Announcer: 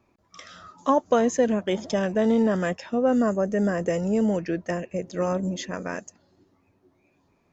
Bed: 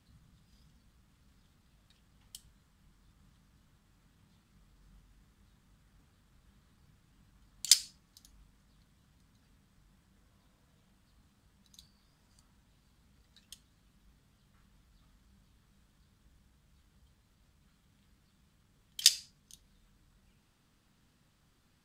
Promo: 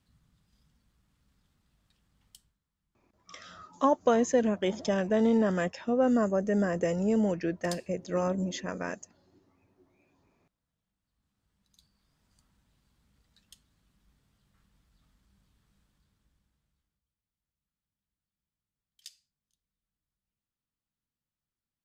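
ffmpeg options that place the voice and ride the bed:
ffmpeg -i stem1.wav -i stem2.wav -filter_complex "[0:a]adelay=2950,volume=-3.5dB[link_01];[1:a]volume=10dB,afade=type=out:start_time=2.33:duration=0.25:silence=0.211349,afade=type=in:start_time=11.03:duration=1.35:silence=0.177828,afade=type=out:start_time=15.74:duration=1.28:silence=0.0794328[link_02];[link_01][link_02]amix=inputs=2:normalize=0" out.wav

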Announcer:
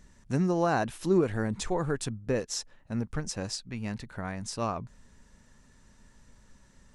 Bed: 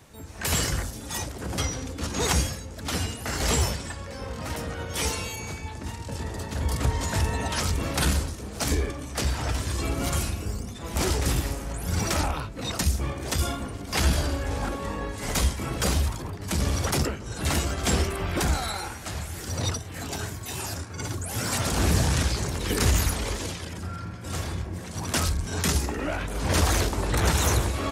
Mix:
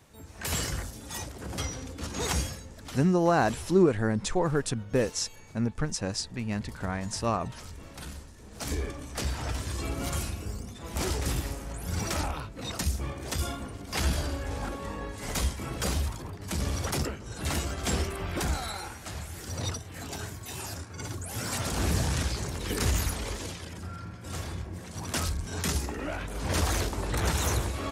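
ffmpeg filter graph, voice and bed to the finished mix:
ffmpeg -i stem1.wav -i stem2.wav -filter_complex "[0:a]adelay=2650,volume=3dB[link_01];[1:a]volume=7.5dB,afade=type=out:start_time=2.57:duration=0.48:silence=0.237137,afade=type=in:start_time=8.32:duration=0.55:silence=0.223872[link_02];[link_01][link_02]amix=inputs=2:normalize=0" out.wav

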